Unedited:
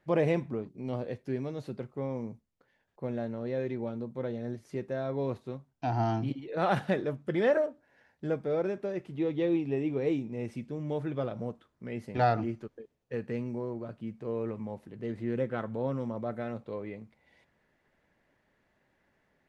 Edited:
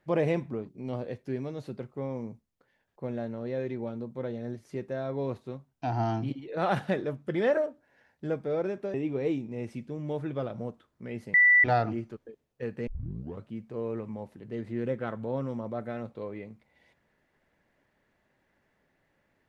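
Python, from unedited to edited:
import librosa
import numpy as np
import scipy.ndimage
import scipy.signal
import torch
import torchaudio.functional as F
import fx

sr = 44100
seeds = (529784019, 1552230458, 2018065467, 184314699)

y = fx.edit(x, sr, fx.cut(start_s=8.94, length_s=0.81),
    fx.insert_tone(at_s=12.15, length_s=0.3, hz=1970.0, db=-16.0),
    fx.tape_start(start_s=13.38, length_s=0.6), tone=tone)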